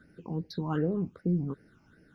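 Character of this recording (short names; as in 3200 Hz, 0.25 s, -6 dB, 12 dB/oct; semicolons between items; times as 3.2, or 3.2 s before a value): phasing stages 8, 2.6 Hz, lowest notch 480–1100 Hz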